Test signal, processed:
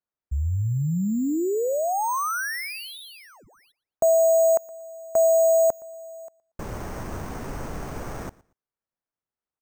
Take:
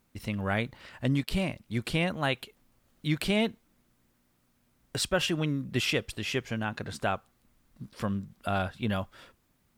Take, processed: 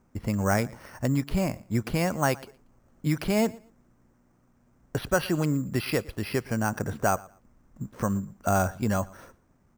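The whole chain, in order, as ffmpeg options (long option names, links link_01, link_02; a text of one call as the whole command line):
ffmpeg -i in.wav -filter_complex "[0:a]lowpass=1400,acrossover=split=770[link_01][link_02];[link_01]alimiter=level_in=0.5dB:limit=-24dB:level=0:latency=1:release=483,volume=-0.5dB[link_03];[link_03][link_02]amix=inputs=2:normalize=0,acrusher=samples=6:mix=1:aa=0.000001,aecho=1:1:117|234:0.075|0.0165,volume=7.5dB" out.wav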